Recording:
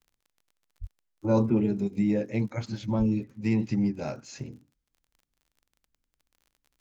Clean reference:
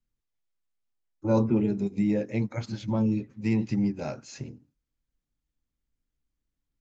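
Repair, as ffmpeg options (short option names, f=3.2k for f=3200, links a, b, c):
-filter_complex "[0:a]adeclick=t=4,asplit=3[a][b][c];[a]afade=t=out:st=0.8:d=0.02[d];[b]highpass=f=140:w=0.5412,highpass=f=140:w=1.3066,afade=t=in:st=0.8:d=0.02,afade=t=out:st=0.92:d=0.02[e];[c]afade=t=in:st=0.92:d=0.02[f];[d][e][f]amix=inputs=3:normalize=0,asplit=3[g][h][i];[g]afade=t=out:st=2.98:d=0.02[j];[h]highpass=f=140:w=0.5412,highpass=f=140:w=1.3066,afade=t=in:st=2.98:d=0.02,afade=t=out:st=3.1:d=0.02[k];[i]afade=t=in:st=3.1:d=0.02[l];[j][k][l]amix=inputs=3:normalize=0"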